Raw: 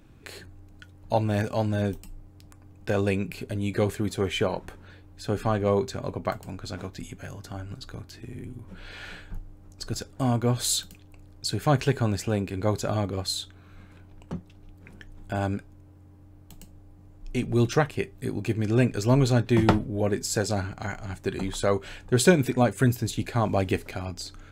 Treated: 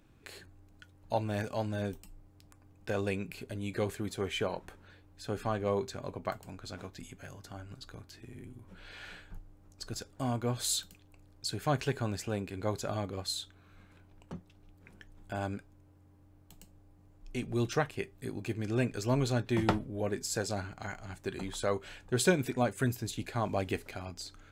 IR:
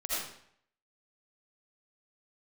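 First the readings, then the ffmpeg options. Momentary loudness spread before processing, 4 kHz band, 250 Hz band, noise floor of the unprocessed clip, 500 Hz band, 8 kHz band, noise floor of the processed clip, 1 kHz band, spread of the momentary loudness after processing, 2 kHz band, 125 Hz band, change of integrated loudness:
19 LU, −6.0 dB, −9.0 dB, −51 dBFS, −7.5 dB, −6.0 dB, −61 dBFS, −6.5 dB, 18 LU, −6.0 dB, −9.5 dB, −8.0 dB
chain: -af "lowshelf=frequency=380:gain=-4,volume=-6dB"

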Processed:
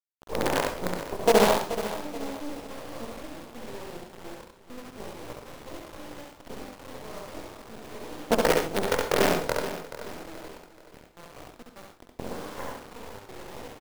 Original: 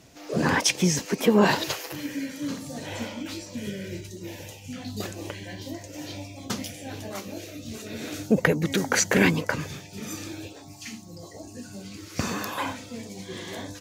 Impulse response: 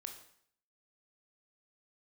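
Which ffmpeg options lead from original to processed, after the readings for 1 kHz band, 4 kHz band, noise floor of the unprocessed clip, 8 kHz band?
+1.5 dB, −4.0 dB, −45 dBFS, −8.0 dB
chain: -filter_complex "[0:a]aeval=exprs='0.794*(cos(1*acos(clip(val(0)/0.794,-1,1)))-cos(1*PI/2))+0.355*(cos(4*acos(clip(val(0)/0.794,-1,1)))-cos(4*PI/2))':channel_layout=same,flanger=delay=16.5:depth=7.1:speed=0.37,bandpass=frequency=530:width_type=q:width=1.6:csg=0,afwtdn=0.0112,acrusher=bits=5:dc=4:mix=0:aa=0.000001,aecho=1:1:429|858|1287|1716:0.237|0.0996|0.0418|0.0176,asplit=2[link_01][link_02];[1:a]atrim=start_sample=2205,atrim=end_sample=3969,adelay=68[link_03];[link_02][link_03]afir=irnorm=-1:irlink=0,volume=2.5dB[link_04];[link_01][link_04]amix=inputs=2:normalize=0,volume=5.5dB"

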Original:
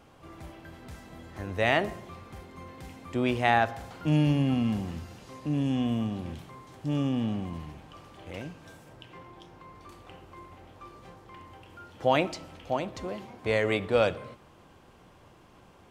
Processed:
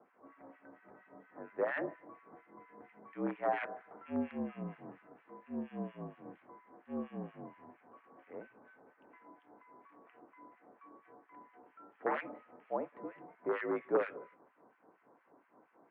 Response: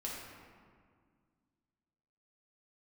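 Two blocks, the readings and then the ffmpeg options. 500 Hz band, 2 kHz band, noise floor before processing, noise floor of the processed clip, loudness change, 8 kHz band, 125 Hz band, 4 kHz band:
−8.5 dB, −12.0 dB, −56 dBFS, −70 dBFS, −11.0 dB, can't be measured, −22.5 dB, below −25 dB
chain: -filter_complex "[0:a]aeval=exprs='(mod(5.96*val(0)+1,2)-1)/5.96':channel_layout=same,highpass=frequency=310:width_type=q:width=0.5412,highpass=frequency=310:width_type=q:width=1.307,lowpass=frequency=2100:width_type=q:width=0.5176,lowpass=frequency=2100:width_type=q:width=0.7071,lowpass=frequency=2100:width_type=q:width=1.932,afreqshift=-53,acrossover=split=1300[link_01][link_02];[link_01]aeval=exprs='val(0)*(1-1/2+1/2*cos(2*PI*4.3*n/s))':channel_layout=same[link_03];[link_02]aeval=exprs='val(0)*(1-1/2-1/2*cos(2*PI*4.3*n/s))':channel_layout=same[link_04];[link_03][link_04]amix=inputs=2:normalize=0,volume=-3dB"

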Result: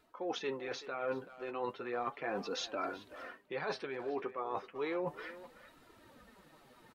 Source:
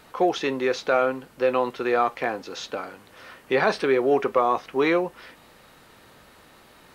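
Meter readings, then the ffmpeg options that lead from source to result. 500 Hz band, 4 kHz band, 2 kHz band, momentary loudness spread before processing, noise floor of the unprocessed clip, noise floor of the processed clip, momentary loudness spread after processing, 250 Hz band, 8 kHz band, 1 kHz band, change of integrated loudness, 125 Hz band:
−15.5 dB, −10.0 dB, −15.0 dB, 12 LU, −53 dBFS, −63 dBFS, 11 LU, −15.5 dB, can't be measured, −15.0 dB, −15.5 dB, −12.5 dB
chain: -filter_complex "[0:a]afftdn=noise_reduction=13:noise_floor=-44,areverse,acompressor=threshold=-35dB:ratio=12,areverse,flanger=delay=2.9:depth=7.7:regen=19:speed=0.34:shape=sinusoidal,asplit=2[link_01][link_02];[link_02]adelay=380,highpass=300,lowpass=3400,asoftclip=type=hard:threshold=-38.5dB,volume=-13dB[link_03];[link_01][link_03]amix=inputs=2:normalize=0,volume=4dB"

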